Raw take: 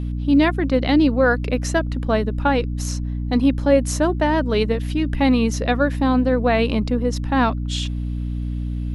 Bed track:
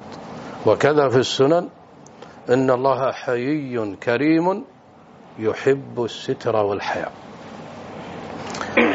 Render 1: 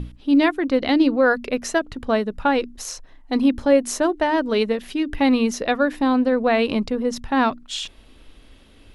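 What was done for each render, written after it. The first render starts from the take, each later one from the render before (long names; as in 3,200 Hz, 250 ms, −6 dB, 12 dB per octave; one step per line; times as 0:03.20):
mains-hum notches 60/120/180/240/300 Hz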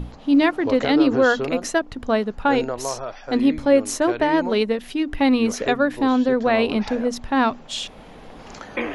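mix in bed track −10.5 dB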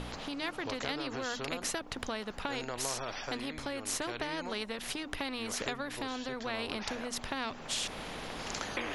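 downward compressor 3 to 1, threshold −29 dBFS, peak gain reduction 13.5 dB
every bin compressed towards the loudest bin 2 to 1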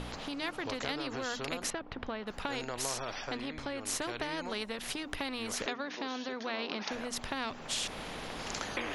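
0:01.70–0:02.27: high-frequency loss of the air 300 metres
0:03.24–0:03.81: high-frequency loss of the air 75 metres
0:05.66–0:06.92: linear-phase brick-wall band-pass 160–6,800 Hz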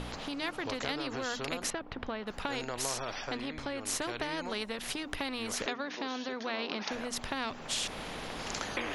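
level +1 dB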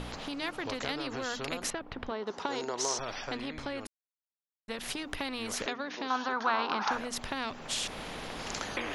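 0:02.11–0:02.99: loudspeaker in its box 190–7,500 Hz, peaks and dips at 400 Hz +8 dB, 960 Hz +6 dB, 1,700 Hz −3 dB, 2,500 Hz −7 dB, 5,900 Hz +8 dB
0:03.87–0:04.68: silence
0:06.10–0:06.98: flat-topped bell 1,100 Hz +13.5 dB 1.2 octaves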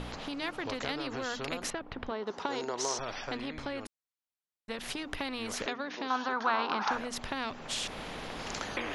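high-shelf EQ 7,000 Hz −5.5 dB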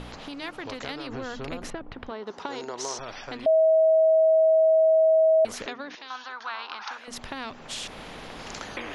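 0:01.09–0:01.92: spectral tilt −2 dB per octave
0:03.46–0:05.45: beep over 640 Hz −15.5 dBFS
0:05.95–0:07.08: resonant band-pass 3,700 Hz, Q 0.55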